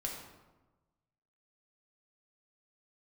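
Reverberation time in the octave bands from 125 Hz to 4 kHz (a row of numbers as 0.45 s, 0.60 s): 1.6 s, 1.3 s, 1.2 s, 1.2 s, 0.85 s, 0.70 s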